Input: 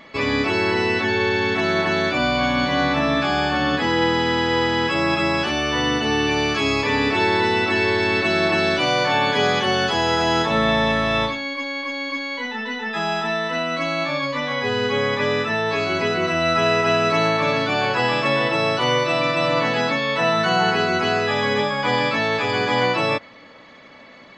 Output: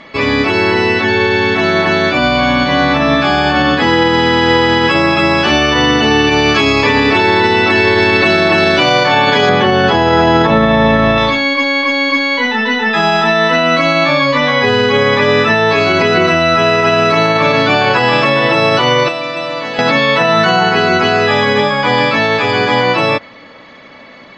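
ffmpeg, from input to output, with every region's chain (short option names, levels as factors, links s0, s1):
-filter_complex "[0:a]asettb=1/sr,asplit=3[s0][s1][s2];[s0]atrim=end=9.494[s3];[s1]atrim=start=9.49:end=11.18,asetpts=PTS-STARTPTS,afade=t=in:d=0.004:c=qsin,afade=t=out:st=1.686:d=0.004:c=qsin,highpass=f=330:p=1,aemphasis=mode=reproduction:type=riaa[s4];[s2]atrim=start=11.176[s5];[s3][s4]acrossfade=d=0.004:c1=hsin:c2=qsin[s6];[s6][s5]acrossfade=d=0.004:c1=qsin:c2=hsin,asettb=1/sr,asplit=3[s7][s8][s9];[s7]atrim=end=19.084[s10];[s8]atrim=start=19.08:end=19.79,asetpts=PTS-STARTPTS,afade=t=in:d=0.004:c=qsin,afade=t=out:st=0.706:d=0.004:c=qsin,highpass=f=470:p=1,acrossover=split=630|3200[s11][s12][s13];[s11]acompressor=threshold=0.0178:ratio=4[s14];[s12]acompressor=threshold=0.0141:ratio=4[s15];[s13]acompressor=threshold=0.00794:ratio=4[s16];[s14][s15][s16]amix=inputs=3:normalize=0[s17];[s9]atrim=start=19.786[s18];[s10][s17]acrossfade=d=0.004:c1=hsin:c2=qsin[s19];[s19][s18]acrossfade=d=0.004:c1=qsin:c2=hsin,lowpass=6300,dynaudnorm=f=440:g=21:m=3.76,alimiter=level_in=2.82:limit=0.891:release=50:level=0:latency=1,volume=0.891"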